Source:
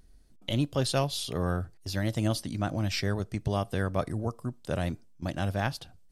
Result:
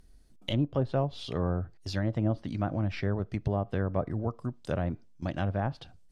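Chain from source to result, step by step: treble ducked by the level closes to 870 Hz, closed at -23.5 dBFS

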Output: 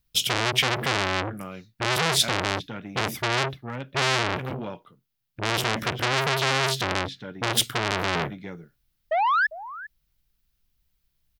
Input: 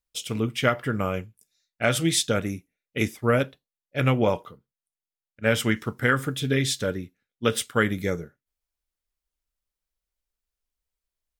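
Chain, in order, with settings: ten-band EQ 125 Hz +11 dB, 500 Hz -10 dB, 1000 Hz -6 dB, 2000 Hz -4 dB, 8000 Hz -10 dB; painted sound rise, 9.11–9.47, 600–1800 Hz -35 dBFS; speakerphone echo 0.4 s, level -17 dB; maximiser +19 dB; core saturation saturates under 2900 Hz; gain -4 dB

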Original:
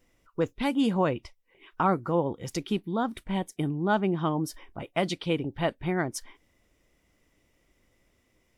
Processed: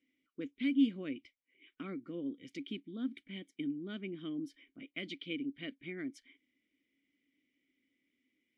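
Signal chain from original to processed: vowel filter i; low shelf 250 Hz -7.5 dB; gain +2.5 dB

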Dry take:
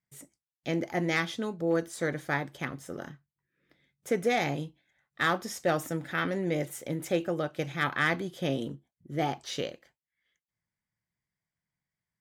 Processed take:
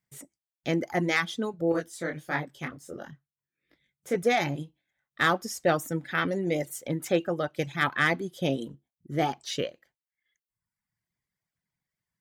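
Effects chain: reverb removal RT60 1.1 s; 1.72–4.16 detuned doubles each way 50 cents; gain +3.5 dB

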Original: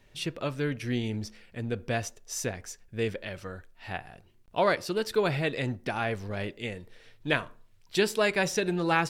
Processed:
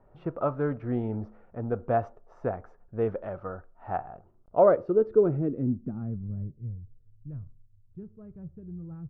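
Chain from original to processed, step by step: low-pass sweep 770 Hz -> 100 Hz, 4.29–6.9; bell 1300 Hz +13.5 dB 0.46 oct; mismatched tape noise reduction decoder only

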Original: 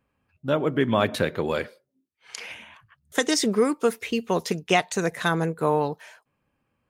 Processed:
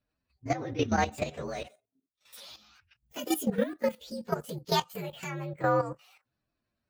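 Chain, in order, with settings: inharmonic rescaling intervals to 123%; level quantiser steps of 12 dB

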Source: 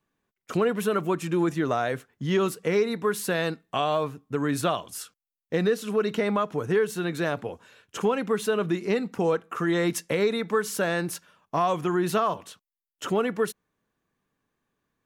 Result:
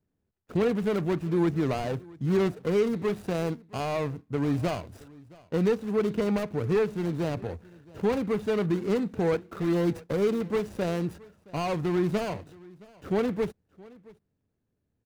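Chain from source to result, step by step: median filter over 41 samples; bell 82 Hz +11.5 dB 1 oct; transient shaper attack -2 dB, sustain +3 dB; on a send: echo 0.67 s -23 dB

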